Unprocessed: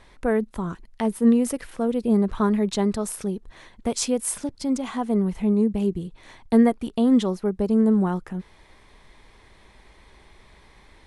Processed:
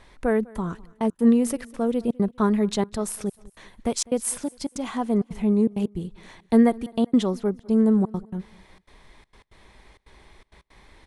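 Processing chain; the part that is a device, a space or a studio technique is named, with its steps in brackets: trance gate with a delay (trance gate "xxxxx.xxxx.x." 164 bpm -60 dB; feedback delay 201 ms, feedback 40%, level -23.5 dB)

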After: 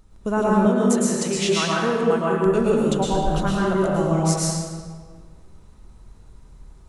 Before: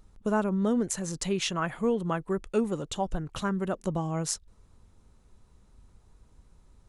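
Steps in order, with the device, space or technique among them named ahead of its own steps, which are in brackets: stairwell (reverberation RT60 1.7 s, pre-delay 103 ms, DRR -5.5 dB); 0.66–2.46 s: high-pass 200 Hz 6 dB/octave; trim +3 dB

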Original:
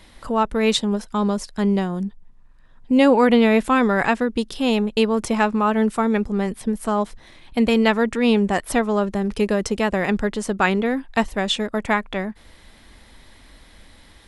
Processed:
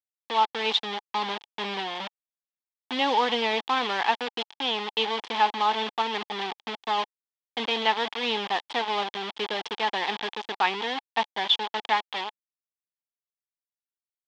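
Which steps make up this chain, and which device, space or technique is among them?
hand-held game console (bit crusher 4-bit; cabinet simulation 500–4500 Hz, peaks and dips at 580 Hz -8 dB, 860 Hz +9 dB, 1.4 kHz -5 dB, 3.3 kHz +10 dB); trim -6 dB

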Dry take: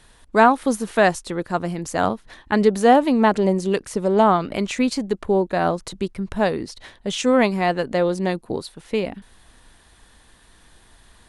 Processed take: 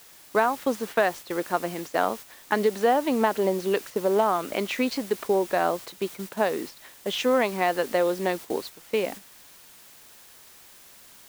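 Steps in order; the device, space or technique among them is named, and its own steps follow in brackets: baby monitor (band-pass 330–4000 Hz; compression 6:1, threshold -18 dBFS, peak gain reduction 10 dB; white noise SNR 17 dB; gate -36 dBFS, range -7 dB)

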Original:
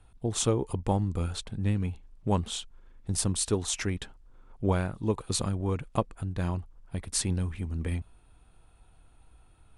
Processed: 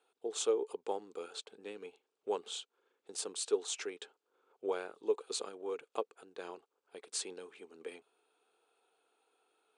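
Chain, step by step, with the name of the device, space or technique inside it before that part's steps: phone speaker on a table (cabinet simulation 410–8200 Hz, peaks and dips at 430 Hz +9 dB, 620 Hz -6 dB, 1 kHz -5 dB, 1.9 kHz -7 dB, 5.6 kHz -4 dB); trim -5.5 dB

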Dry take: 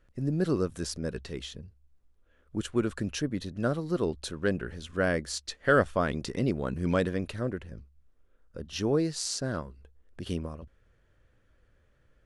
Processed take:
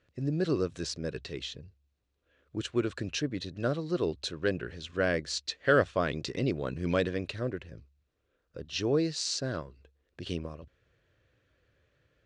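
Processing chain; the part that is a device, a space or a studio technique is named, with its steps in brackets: car door speaker (cabinet simulation 86–7200 Hz, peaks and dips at 210 Hz -9 dB, 860 Hz -5 dB, 1.3 kHz -3 dB, 2.6 kHz +4 dB, 4 kHz +5 dB)

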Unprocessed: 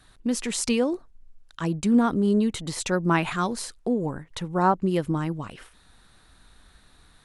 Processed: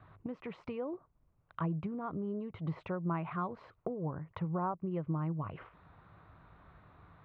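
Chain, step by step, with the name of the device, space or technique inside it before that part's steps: bass amplifier (compression 4:1, threshold -37 dBFS, peak gain reduction 18 dB; cabinet simulation 72–2100 Hz, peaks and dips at 100 Hz +10 dB, 160 Hz +7 dB, 230 Hz -7 dB, 630 Hz +4 dB, 1.1 kHz +6 dB, 1.7 kHz -8 dB)

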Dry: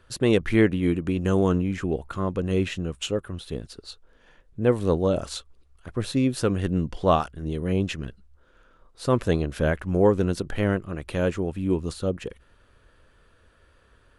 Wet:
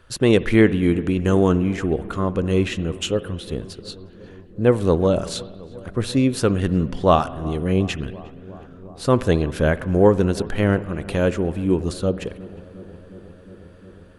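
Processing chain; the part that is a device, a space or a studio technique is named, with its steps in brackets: dub delay into a spring reverb (filtered feedback delay 359 ms, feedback 82%, low-pass 1.8 kHz, level -21 dB; spring tank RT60 1.5 s, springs 59 ms, chirp 60 ms, DRR 16.5 dB); trim +4.5 dB

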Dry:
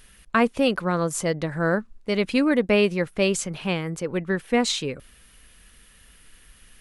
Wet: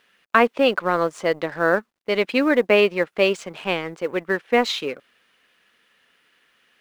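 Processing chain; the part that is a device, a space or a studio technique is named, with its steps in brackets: phone line with mismatched companding (band-pass 360–3400 Hz; companding laws mixed up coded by A); trim +6 dB

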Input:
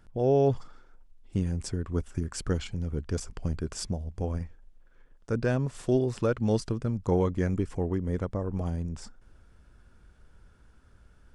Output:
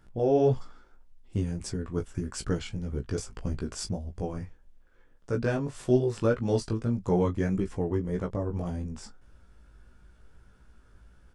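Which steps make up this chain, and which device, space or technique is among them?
double-tracked vocal (doubling 21 ms -12.5 dB; chorus 1.7 Hz, delay 15.5 ms, depth 3.3 ms); trim +3 dB

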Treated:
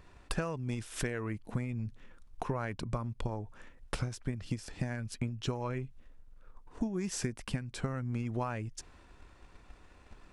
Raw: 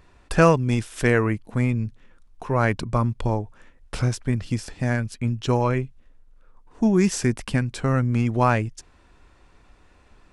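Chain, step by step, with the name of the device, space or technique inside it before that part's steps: drum-bus smash (transient shaper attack +8 dB, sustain +3 dB; compression 8:1, threshold -27 dBFS, peak gain reduction 21 dB; saturation -13 dBFS, distortion -28 dB); trim -4 dB

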